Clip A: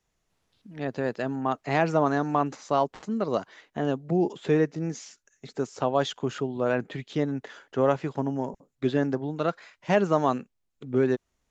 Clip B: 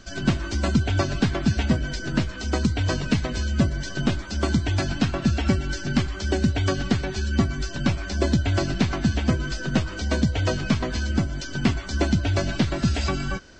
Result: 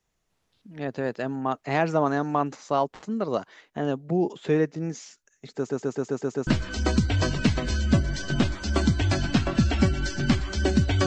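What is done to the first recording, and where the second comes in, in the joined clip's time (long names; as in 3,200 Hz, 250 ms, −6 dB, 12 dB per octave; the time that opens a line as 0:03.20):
clip A
0:05.56: stutter in place 0.13 s, 7 plays
0:06.47: continue with clip B from 0:02.14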